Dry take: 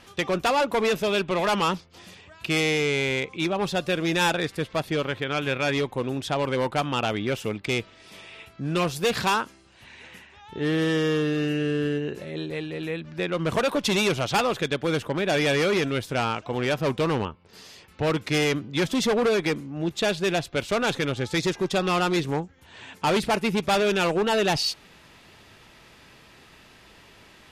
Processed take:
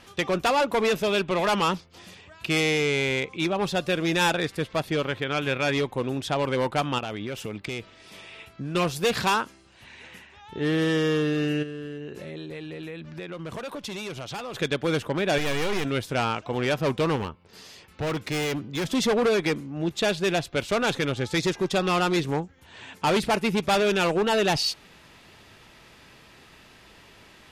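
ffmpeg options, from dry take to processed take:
-filter_complex "[0:a]asettb=1/sr,asplit=3[a][b][c];[a]atrim=end=6.984[d];[b]atrim=start=6.98:end=8.75,asetpts=PTS-STARTPTS,afade=t=in:d=0.004:c=qsin,afade=t=out:st=1.766:d=0.004:c=qsin,acompressor=threshold=-28dB:ratio=10:attack=3.2:release=140:knee=1:detection=peak[e];[c]atrim=start=8.746[f];[d][e]acrossfade=d=0.004:c1=hsin:c2=qsin[g];[g][f]acrossfade=d=0.004:c1=qsin:c2=hsin,asplit=3[h][i][j];[h]afade=t=out:st=11.62:d=0.02[k];[i]acompressor=threshold=-33dB:ratio=6:attack=3.2:release=140:knee=1:detection=peak,afade=t=in:st=11.62:d=0.02,afade=t=out:st=14.53:d=0.02[l];[j]afade=t=in:st=14.53:d=0.02[m];[k][l][m]amix=inputs=3:normalize=0,asettb=1/sr,asplit=3[n][o][p];[n]atrim=end=15.384[q];[o]atrim=start=15.38:end=15.85,asetpts=PTS-STARTPTS,afade=t=in:d=0.004:c=qsin,afade=t=out:st=0.466:d=0.004:c=qsin,aeval=exprs='max(val(0),0)':c=same[r];[p]atrim=start=15.846[s];[q][r]acrossfade=d=0.004:c1=hsin:c2=qsin[t];[t][s]acrossfade=d=0.004:c1=qsin:c2=hsin,asettb=1/sr,asplit=3[u][v][w];[u]atrim=end=17.164[x];[v]atrim=start=17.16:end=18.86,asetpts=PTS-STARTPTS,afade=t=in:d=0.004:c=qsin,afade=t=out:st=1.696:d=0.004:c=qsin,volume=25dB,asoftclip=hard,volume=-25dB[y];[w]atrim=start=18.856[z];[x][y]acrossfade=d=0.004:c1=hsin:c2=qsin[aa];[aa][z]acrossfade=d=0.004:c1=qsin:c2=hsin"

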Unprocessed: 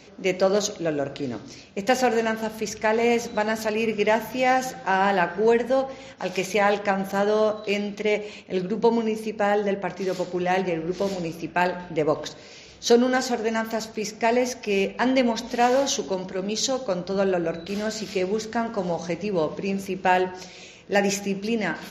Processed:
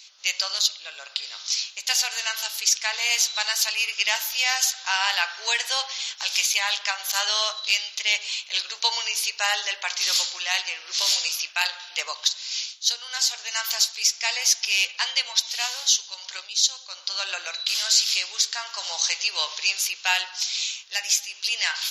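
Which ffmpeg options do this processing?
-filter_complex "[0:a]asettb=1/sr,asplit=3[a][b][c];[a]atrim=end=0.624[d];[b]atrim=start=0.62:end=1.4,asetpts=PTS-STARTPTS,afade=t=in:d=0.004:c=qsin,afade=t=out:st=0.776:d=0.004:c=qsin,equalizer=f=6.4k:t=o:w=0.2:g=-11.5[e];[c]atrim=start=1.396[f];[d][e]acrossfade=d=0.004:c1=hsin:c2=qsin[g];[g][f]acrossfade=d=0.004:c1=qsin:c2=hsin,highpass=f=1.1k:w=0.5412,highpass=f=1.1k:w=1.3066,highshelf=f=2.6k:t=q:w=1.5:g=12,dynaudnorm=f=150:g=3:m=13.5dB,volume=-5.5dB"

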